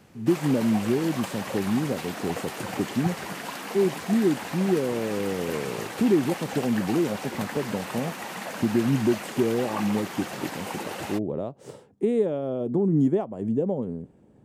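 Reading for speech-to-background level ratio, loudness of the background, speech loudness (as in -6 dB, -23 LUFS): 7.5 dB, -34.5 LUFS, -27.0 LUFS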